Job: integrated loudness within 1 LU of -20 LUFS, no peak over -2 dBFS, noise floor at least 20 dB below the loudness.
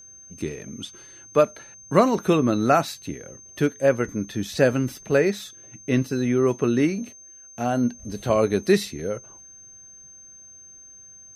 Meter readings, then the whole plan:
steady tone 6300 Hz; tone level -44 dBFS; loudness -23.0 LUFS; peak -4.0 dBFS; loudness target -20.0 LUFS
-> notch 6300 Hz, Q 30; gain +3 dB; limiter -2 dBFS

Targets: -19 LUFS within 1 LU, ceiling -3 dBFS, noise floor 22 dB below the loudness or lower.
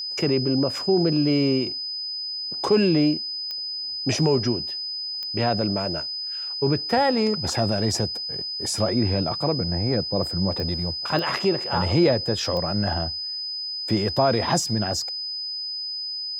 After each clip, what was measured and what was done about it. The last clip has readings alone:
clicks 5; steady tone 5000 Hz; tone level -28 dBFS; loudness -23.5 LUFS; peak -8.5 dBFS; loudness target -19.0 LUFS
-> de-click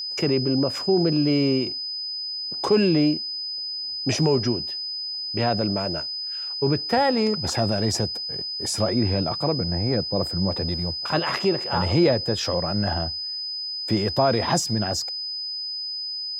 clicks 0; steady tone 5000 Hz; tone level -28 dBFS
-> notch 5000 Hz, Q 30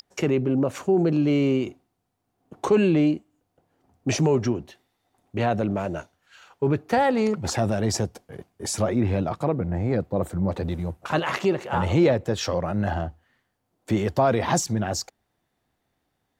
steady tone none; loudness -24.5 LUFS; peak -9.0 dBFS; loudness target -19.0 LUFS
-> gain +5.5 dB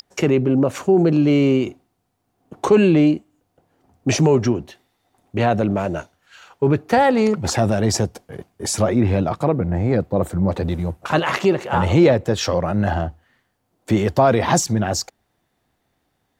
loudness -19.0 LUFS; peak -3.5 dBFS; noise floor -71 dBFS

